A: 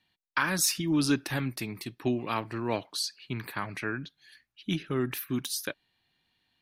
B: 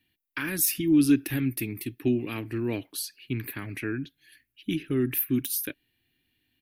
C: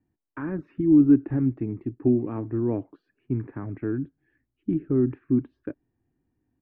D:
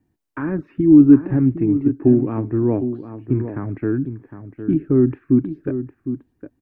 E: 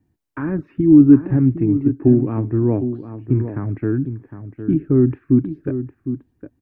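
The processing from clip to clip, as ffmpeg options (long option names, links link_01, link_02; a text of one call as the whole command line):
ffmpeg -i in.wav -filter_complex "[0:a]asplit=2[link_01][link_02];[link_02]alimiter=limit=-21.5dB:level=0:latency=1:release=98,volume=-2.5dB[link_03];[link_01][link_03]amix=inputs=2:normalize=0,firequalizer=gain_entry='entry(120,0);entry(180,-7);entry(280,4);entry(560,-11);entry(1000,-17);entry(1700,-6);entry(2600,-2);entry(4100,-11);entry(7100,-8);entry(12000,7)':delay=0.05:min_phase=1" out.wav
ffmpeg -i in.wav -af "lowpass=frequency=1100:width=0.5412,lowpass=frequency=1100:width=1.3066,volume=4dB" out.wav
ffmpeg -i in.wav -filter_complex "[0:a]asplit=2[link_01][link_02];[link_02]adelay=758,volume=-10dB,highshelf=frequency=4000:gain=-17.1[link_03];[link_01][link_03]amix=inputs=2:normalize=0,volume=7dB" out.wav
ffmpeg -i in.wav -af "equalizer=frequency=88:width_type=o:width=2:gain=5.5,volume=-1dB" out.wav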